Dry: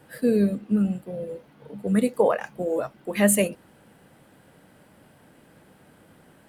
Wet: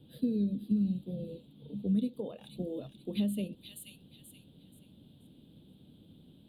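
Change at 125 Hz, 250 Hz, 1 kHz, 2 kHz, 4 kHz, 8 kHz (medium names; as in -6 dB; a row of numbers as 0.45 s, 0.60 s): -6.5 dB, -7.0 dB, under -25 dB, -25.0 dB, -7.5 dB, -23.5 dB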